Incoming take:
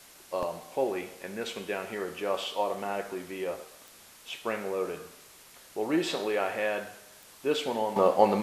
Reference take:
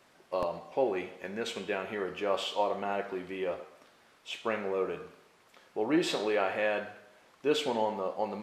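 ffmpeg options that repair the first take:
-af "adeclick=t=4,afwtdn=0.0025,asetnsamples=n=441:p=0,asendcmd='7.96 volume volume -11.5dB',volume=1"

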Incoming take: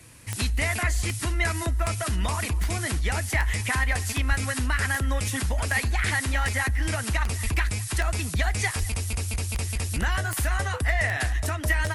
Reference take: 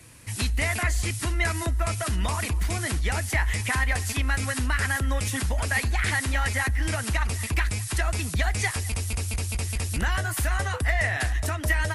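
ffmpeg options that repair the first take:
-filter_complex "[0:a]adeclick=t=4,asplit=3[s0][s1][s2];[s0]afade=t=out:st=4.28:d=0.02[s3];[s1]highpass=f=140:w=0.5412,highpass=f=140:w=1.3066,afade=t=in:st=4.28:d=0.02,afade=t=out:st=4.4:d=0.02[s4];[s2]afade=t=in:st=4.4:d=0.02[s5];[s3][s4][s5]amix=inputs=3:normalize=0,asplit=3[s6][s7][s8];[s6]afade=t=out:st=7.43:d=0.02[s9];[s7]highpass=f=140:w=0.5412,highpass=f=140:w=1.3066,afade=t=in:st=7.43:d=0.02,afade=t=out:st=7.55:d=0.02[s10];[s8]afade=t=in:st=7.55:d=0.02[s11];[s9][s10][s11]amix=inputs=3:normalize=0,asplit=3[s12][s13][s14];[s12]afade=t=out:st=8.79:d=0.02[s15];[s13]highpass=f=140:w=0.5412,highpass=f=140:w=1.3066,afade=t=in:st=8.79:d=0.02,afade=t=out:st=8.91:d=0.02[s16];[s14]afade=t=in:st=8.91:d=0.02[s17];[s15][s16][s17]amix=inputs=3:normalize=0"

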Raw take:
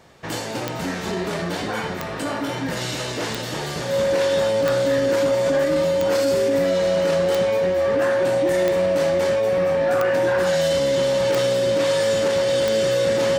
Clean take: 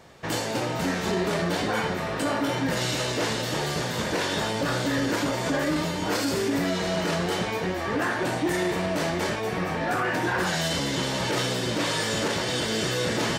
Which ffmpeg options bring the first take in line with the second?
-af "adeclick=t=4,bandreject=f=550:w=30"

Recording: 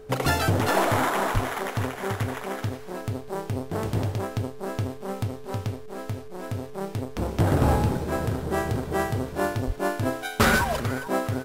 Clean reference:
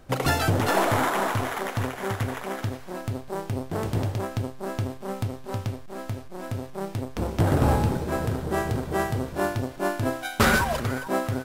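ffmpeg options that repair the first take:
-filter_complex "[0:a]bandreject=f=430:w=30,asplit=3[s0][s1][s2];[s0]afade=t=out:st=1.33:d=0.02[s3];[s1]highpass=f=140:w=0.5412,highpass=f=140:w=1.3066,afade=t=in:st=1.33:d=0.02,afade=t=out:st=1.45:d=0.02[s4];[s2]afade=t=in:st=1.45:d=0.02[s5];[s3][s4][s5]amix=inputs=3:normalize=0,asplit=3[s6][s7][s8];[s6]afade=t=out:st=9.66:d=0.02[s9];[s7]highpass=f=140:w=0.5412,highpass=f=140:w=1.3066,afade=t=in:st=9.66:d=0.02,afade=t=out:st=9.78:d=0.02[s10];[s8]afade=t=in:st=9.78:d=0.02[s11];[s9][s10][s11]amix=inputs=3:normalize=0"

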